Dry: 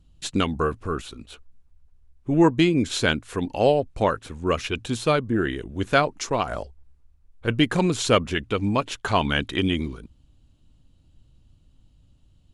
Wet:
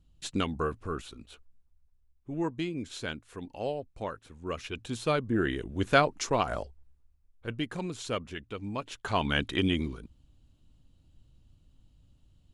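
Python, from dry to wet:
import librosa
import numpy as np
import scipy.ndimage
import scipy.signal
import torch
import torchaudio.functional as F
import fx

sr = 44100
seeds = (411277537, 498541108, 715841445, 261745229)

y = fx.gain(x, sr, db=fx.line((1.18, -7.0), (2.34, -14.5), (4.24, -14.5), (5.54, -3.0), (6.51, -3.0), (7.68, -14.0), (8.64, -14.0), (9.39, -4.0)))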